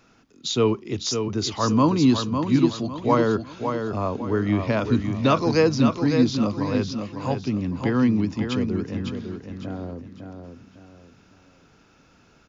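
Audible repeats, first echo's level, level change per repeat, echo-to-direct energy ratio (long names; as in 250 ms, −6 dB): 4, −6.5 dB, −9.5 dB, −6.0 dB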